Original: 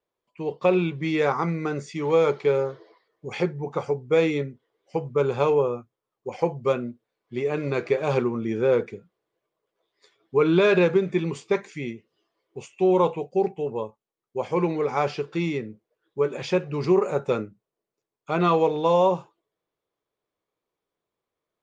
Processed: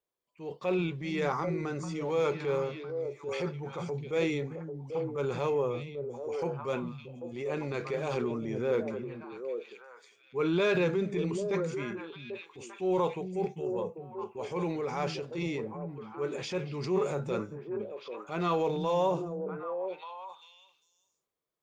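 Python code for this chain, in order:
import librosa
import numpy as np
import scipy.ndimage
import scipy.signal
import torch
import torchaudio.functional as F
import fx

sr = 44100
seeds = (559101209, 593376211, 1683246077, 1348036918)

y = fx.high_shelf(x, sr, hz=5200.0, db=8.5)
y = fx.echo_stepped(y, sr, ms=395, hz=170.0, octaves=1.4, feedback_pct=70, wet_db=-3)
y = fx.transient(y, sr, attack_db=-6, sustain_db=4)
y = y * 10.0 ** (-8.0 / 20.0)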